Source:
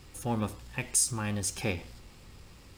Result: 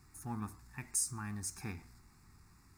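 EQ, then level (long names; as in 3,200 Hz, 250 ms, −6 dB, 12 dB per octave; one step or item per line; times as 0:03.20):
low-shelf EQ 64 Hz −7.5 dB
phaser with its sweep stopped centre 1,300 Hz, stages 4
−6.5 dB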